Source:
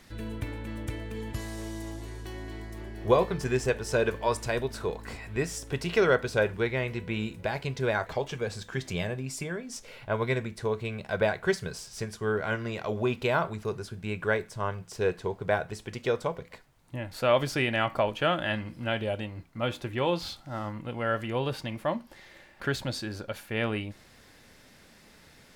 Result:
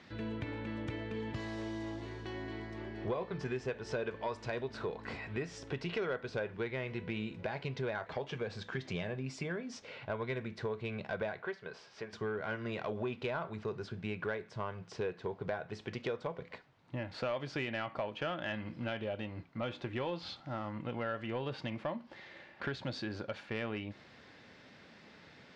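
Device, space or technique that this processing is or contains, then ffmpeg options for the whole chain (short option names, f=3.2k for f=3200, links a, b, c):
AM radio: -filter_complex "[0:a]highpass=110,lowpass=4.5k,acompressor=threshold=-34dB:ratio=4,asoftclip=type=tanh:threshold=-25.5dB,lowpass=5.7k,asettb=1/sr,asplit=3[a][b][c];[a]atrim=end=11.424[d];[b]atrim=start=11.42:end=12.13,asetpts=PTS-STARTPTS,afade=t=in:d=0.004:c=qsin,afade=t=out:st=0.706:d=0.004:c=qsin,bass=f=250:g=-14,treble=f=4k:g=-12[e];[c]atrim=start=12.126[f];[d][e]acrossfade=d=0.004:c1=hsin:c2=qsin[g];[g][f]acrossfade=d=0.004:c1=qsin:c2=hsin"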